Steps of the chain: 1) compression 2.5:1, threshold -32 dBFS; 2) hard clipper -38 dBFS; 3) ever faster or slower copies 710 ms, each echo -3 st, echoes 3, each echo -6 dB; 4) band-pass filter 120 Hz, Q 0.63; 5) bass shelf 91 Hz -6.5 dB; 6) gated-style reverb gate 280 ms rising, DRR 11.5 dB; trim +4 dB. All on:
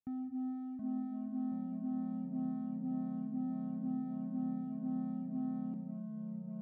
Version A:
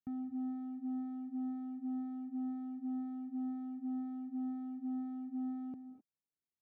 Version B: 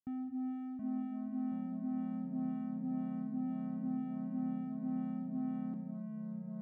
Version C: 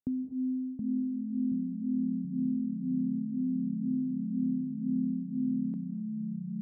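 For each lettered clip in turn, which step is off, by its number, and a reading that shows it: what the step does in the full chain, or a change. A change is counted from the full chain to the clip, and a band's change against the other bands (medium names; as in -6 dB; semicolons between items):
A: 3, momentary loudness spread change -2 LU; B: 1, mean gain reduction 3.5 dB; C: 2, distortion -9 dB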